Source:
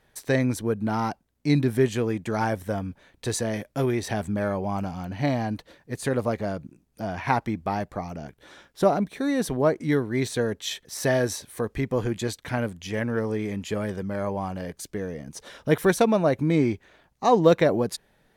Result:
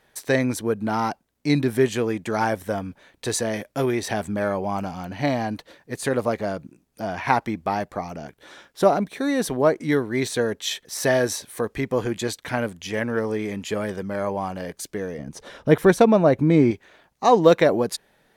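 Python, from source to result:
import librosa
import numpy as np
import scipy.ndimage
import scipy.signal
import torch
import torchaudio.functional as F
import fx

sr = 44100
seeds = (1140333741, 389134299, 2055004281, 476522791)

y = fx.tilt_eq(x, sr, slope=-2.0, at=(15.18, 16.71))
y = fx.low_shelf(y, sr, hz=160.0, db=-10.0)
y = y * librosa.db_to_amplitude(4.0)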